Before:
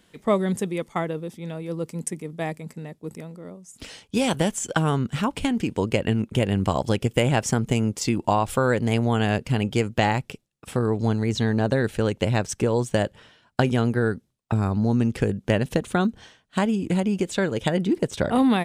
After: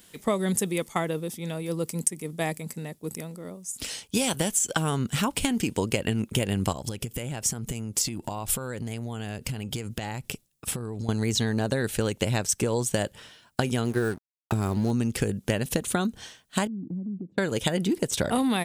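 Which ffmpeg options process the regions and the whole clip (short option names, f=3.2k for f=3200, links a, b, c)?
-filter_complex "[0:a]asettb=1/sr,asplit=3[a][b][c];[a]atrim=end=6.724[d];[b]atrim=start=6.72:end=11.09,asetpts=PTS-STARTPTS,afade=t=in:d=0.004:c=qsin,afade=t=out:st=4.366:d=0.004:c=qsin,lowshelf=f=170:g=6,acompressor=threshold=-28dB:ratio=16:attack=3.2:release=140:knee=1:detection=peak[e];[c]atrim=start=11.086[f];[d][e]acrossfade=d=0.004:c1=hsin:c2=qsin[g];[g][f]acrossfade=d=0.004:c1=qsin:c2=hsin,asettb=1/sr,asplit=3[h][i][j];[h]atrim=end=13.854[k];[i]atrim=start=13.85:end=14.91,asetpts=PTS-STARTPTS,afade=t=in:d=0.004:c=qsin,afade=t=out:st=1.056:d=0.004:c=qsin,equalizer=f=370:t=o:w=0.22:g=7.5,aeval=exprs='sgn(val(0))*max(abs(val(0))-0.00944,0)':c=same[l];[j]atrim=start=14.906[m];[k][l]acrossfade=d=0.004:c1=hsin:c2=qsin[n];[n][m]acrossfade=d=0.004:c1=qsin:c2=hsin,asettb=1/sr,asplit=3[o][p][q];[o]atrim=end=16.674[r];[p]atrim=start=16.67:end=17.38,asetpts=PTS-STARTPTS,afade=t=in:d=0.004:c=qsin,afade=t=out:st=0.706:d=0.004:c=qsin,asuperpass=centerf=200:order=4:qfactor=1.3,acompressor=threshold=-38dB:ratio=2:attack=3.2:release=140:knee=1:detection=peak[s];[q]atrim=start=17.376[t];[r][s]acrossfade=d=0.004:c1=hsin:c2=qsin[u];[u][t]acrossfade=d=0.004:c1=qsin:c2=hsin,aemphasis=mode=production:type=75kf,acompressor=threshold=-21dB:ratio=6"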